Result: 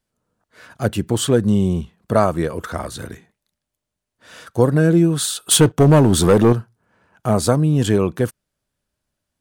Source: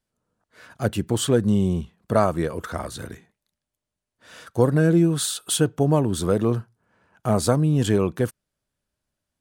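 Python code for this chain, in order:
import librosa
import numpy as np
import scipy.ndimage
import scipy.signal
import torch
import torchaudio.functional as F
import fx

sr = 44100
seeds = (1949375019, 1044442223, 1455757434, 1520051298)

y = fx.leveller(x, sr, passes=2, at=(5.51, 6.53))
y = y * librosa.db_to_amplitude(3.5)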